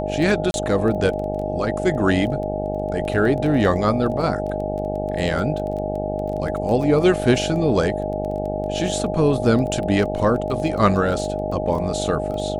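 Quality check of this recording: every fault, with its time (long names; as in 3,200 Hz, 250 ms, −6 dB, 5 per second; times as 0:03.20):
mains buzz 50 Hz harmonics 17 −27 dBFS
surface crackle 14 per second −28 dBFS
whistle 620 Hz −26 dBFS
0:00.51–0:00.54: drop-out 31 ms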